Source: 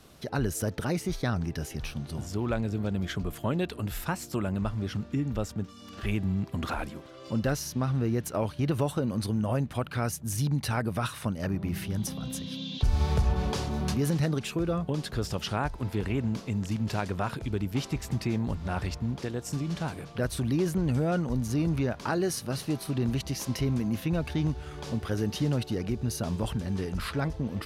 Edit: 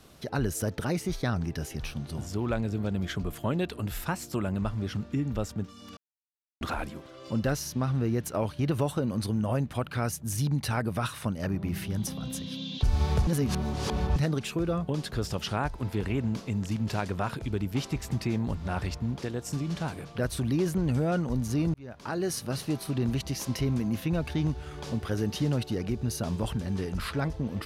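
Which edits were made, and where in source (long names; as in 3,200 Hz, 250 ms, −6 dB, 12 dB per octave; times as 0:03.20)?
0:05.97–0:06.61: silence
0:13.27–0:14.16: reverse
0:21.74–0:22.36: fade in linear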